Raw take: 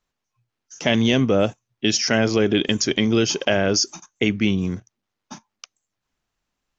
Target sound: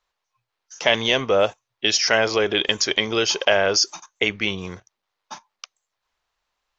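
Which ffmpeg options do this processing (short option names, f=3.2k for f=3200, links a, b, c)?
-af "equalizer=f=125:t=o:w=1:g=-7,equalizer=f=250:t=o:w=1:g=-10,equalizer=f=500:t=o:w=1:g=5,equalizer=f=1k:t=o:w=1:g=8,equalizer=f=2k:t=o:w=1:g=4,equalizer=f=4k:t=o:w=1:g=7,volume=-3dB"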